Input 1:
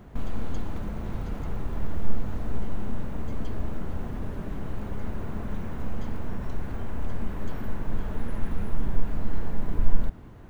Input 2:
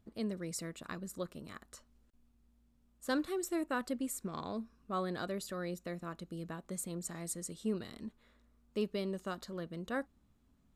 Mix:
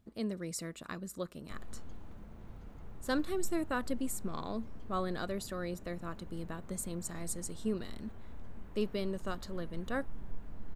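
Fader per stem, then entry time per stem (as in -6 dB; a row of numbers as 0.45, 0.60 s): -17.5, +1.0 dB; 1.35, 0.00 s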